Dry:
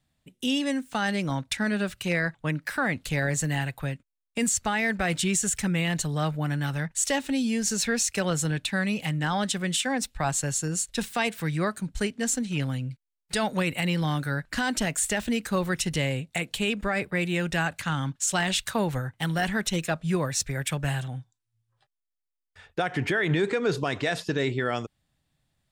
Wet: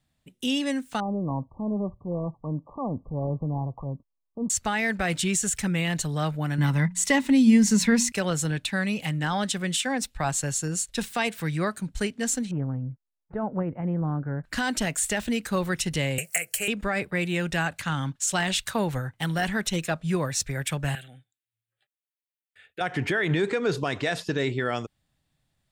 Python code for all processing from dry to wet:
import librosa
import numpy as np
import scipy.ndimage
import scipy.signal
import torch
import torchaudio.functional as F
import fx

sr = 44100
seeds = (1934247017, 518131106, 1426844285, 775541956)

y = fx.chain(x, sr, fx.transient(attack_db=-6, sustain_db=4),
    fx.brickwall_lowpass(high_hz=1200.0), at=(1.0, 4.5))
y = fx.chain(y, sr, fx.hum_notches(base_hz=60, count=4),
    fx.small_body(hz=(200.0, 990.0, 2000.0), ring_ms=25, db=12), at=(6.58, 8.12))
y = fx.chain(y, sr, fx.lowpass(hz=1100.0, slope=24),
    fx.dynamic_eq(hz=870.0, q=1.1, threshold_db=-40.0, ratio=4.0, max_db=-4),
    fx.doppler_dist(depth_ms=0.11), at=(12.51, 14.44))
y = fx.chain(y, sr, fx.riaa(side='recording'),
    fx.fixed_phaser(hz=1000.0, stages=6),
    fx.band_squash(depth_pct=100), at=(16.18, 16.68))
y = fx.chain(y, sr, fx.highpass(hz=760.0, slope=6),
    fx.fixed_phaser(hz=2400.0, stages=4), at=(20.95, 22.81))